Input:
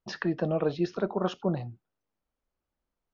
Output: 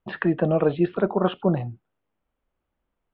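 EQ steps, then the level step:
Butterworth low-pass 3,500 Hz 48 dB per octave
high-frequency loss of the air 81 metres
+7.0 dB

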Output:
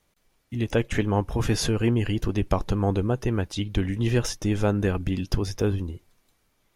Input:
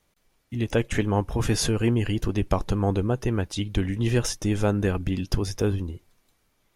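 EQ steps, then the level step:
dynamic equaliser 8,900 Hz, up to −5 dB, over −51 dBFS, Q 1.3
0.0 dB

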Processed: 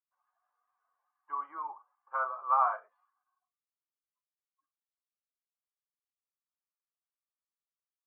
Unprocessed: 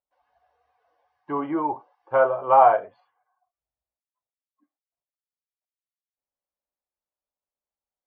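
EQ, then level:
resonant band-pass 1,200 Hz, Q 6.1
high-frequency loss of the air 380 metres
spectral tilt +4.5 dB per octave
0.0 dB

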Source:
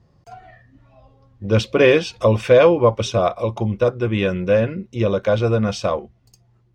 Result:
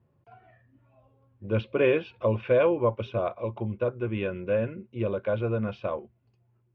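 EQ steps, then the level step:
loudspeaker in its box 120–2,500 Hz, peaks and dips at 180 Hz −9 dB, 290 Hz −4 dB, 480 Hz −4 dB, 750 Hz −8 dB, 1,200 Hz −6 dB, 1,900 Hz −9 dB
−5.5 dB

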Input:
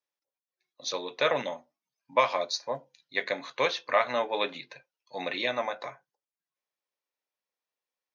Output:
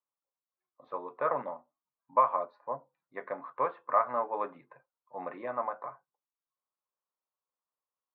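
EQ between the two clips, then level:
transistor ladder low-pass 1,300 Hz, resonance 60%
high-frequency loss of the air 120 metres
+4.0 dB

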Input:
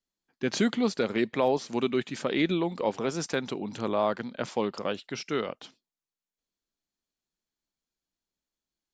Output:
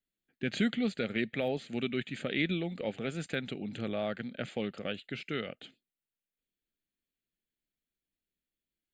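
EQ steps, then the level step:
dynamic equaliser 360 Hz, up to −7 dB, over −39 dBFS, Q 1.3
phaser with its sweep stopped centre 2,400 Hz, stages 4
0.0 dB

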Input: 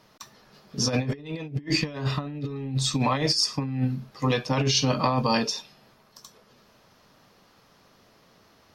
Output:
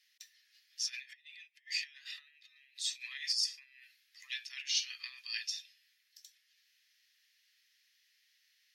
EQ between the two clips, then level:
Chebyshev high-pass filter 1,800 Hz, order 5
−7.5 dB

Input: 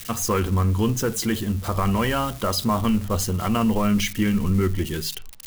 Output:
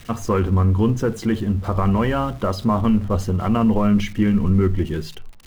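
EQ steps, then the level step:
low-pass filter 1,100 Hz 6 dB per octave
+4.0 dB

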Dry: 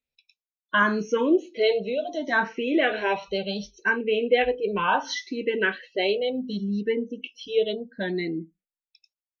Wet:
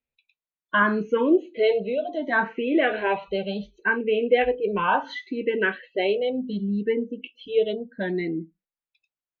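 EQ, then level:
moving average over 8 samples
+1.5 dB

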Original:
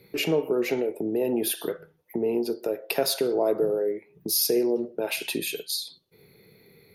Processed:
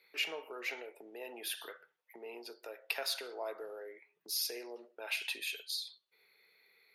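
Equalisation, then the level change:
high-pass filter 1,500 Hz 12 dB per octave
low-pass filter 2,000 Hz 6 dB per octave
0.0 dB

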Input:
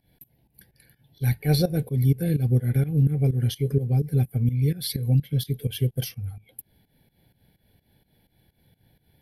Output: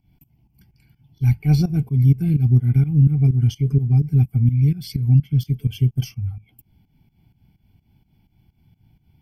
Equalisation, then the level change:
low-shelf EQ 430 Hz +6.5 dB
phaser with its sweep stopped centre 2,600 Hz, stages 8
+1.0 dB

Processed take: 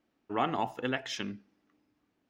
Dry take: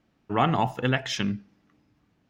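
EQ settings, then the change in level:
low shelf with overshoot 210 Hz −7.5 dB, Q 1.5
−7.0 dB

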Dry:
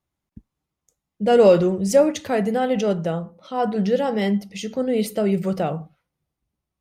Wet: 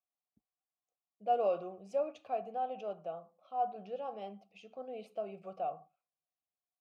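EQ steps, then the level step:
formant filter a
low-shelf EQ 180 Hz +3.5 dB
dynamic equaliser 2,100 Hz, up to −4 dB, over −56 dBFS, Q 4.9
−7.0 dB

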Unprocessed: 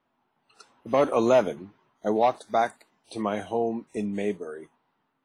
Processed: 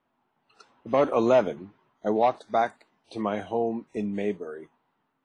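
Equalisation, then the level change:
high-frequency loss of the air 92 metres
0.0 dB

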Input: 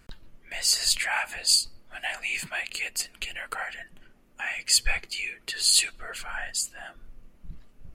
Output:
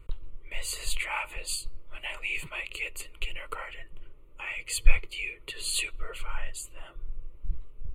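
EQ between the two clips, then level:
spectral tilt −2 dB per octave
phaser with its sweep stopped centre 1,100 Hz, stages 8
+1.0 dB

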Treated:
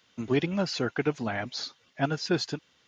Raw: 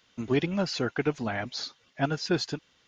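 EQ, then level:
high-pass filter 67 Hz
0.0 dB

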